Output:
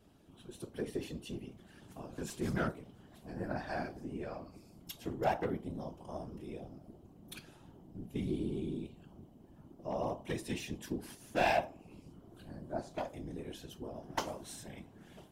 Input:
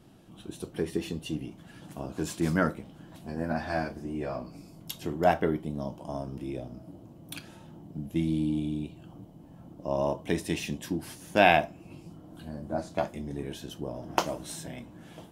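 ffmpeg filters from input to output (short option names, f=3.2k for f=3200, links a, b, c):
-af "aeval=exprs='clip(val(0),-1,0.141)':c=same,bandreject=f=64.99:t=h:w=4,bandreject=f=129.98:t=h:w=4,bandreject=f=194.97:t=h:w=4,bandreject=f=259.96:t=h:w=4,bandreject=f=324.95:t=h:w=4,bandreject=f=389.94:t=h:w=4,bandreject=f=454.93:t=h:w=4,bandreject=f=519.92:t=h:w=4,bandreject=f=584.91:t=h:w=4,bandreject=f=649.9:t=h:w=4,bandreject=f=714.89:t=h:w=4,bandreject=f=779.88:t=h:w=4,bandreject=f=844.87:t=h:w=4,bandreject=f=909.86:t=h:w=4,bandreject=f=974.85:t=h:w=4,bandreject=f=1.03984k:t=h:w=4,bandreject=f=1.10483k:t=h:w=4,bandreject=f=1.16982k:t=h:w=4,afftfilt=real='hypot(re,im)*cos(2*PI*random(0))':imag='hypot(re,im)*sin(2*PI*random(1))':win_size=512:overlap=0.75,volume=-1.5dB"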